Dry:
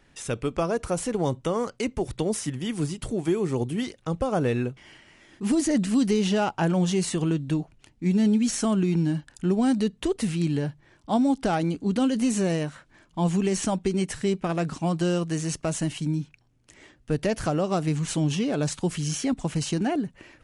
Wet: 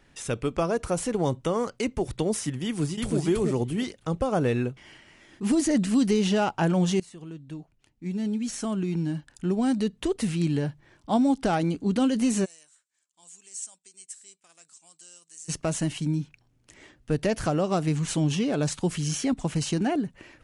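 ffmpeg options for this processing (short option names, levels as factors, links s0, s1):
-filter_complex "[0:a]asplit=2[s0][s1];[s1]afade=t=in:st=2.64:d=0.01,afade=t=out:st=3.18:d=0.01,aecho=0:1:330|660|990:0.841395|0.168279|0.0336558[s2];[s0][s2]amix=inputs=2:normalize=0,asplit=3[s3][s4][s5];[s3]afade=t=out:st=12.44:d=0.02[s6];[s4]bandpass=f=7900:t=q:w=3.9,afade=t=in:st=12.44:d=0.02,afade=t=out:st=15.48:d=0.02[s7];[s5]afade=t=in:st=15.48:d=0.02[s8];[s6][s7][s8]amix=inputs=3:normalize=0,asplit=2[s9][s10];[s9]atrim=end=7,asetpts=PTS-STARTPTS,afade=t=out:st=6.996:d=0.004:c=hsin:silence=0.0891251[s11];[s10]atrim=start=7,asetpts=PTS-STARTPTS,afade=t=in:d=3.5:silence=0.0891251[s12];[s11][s12]concat=n=2:v=0:a=1"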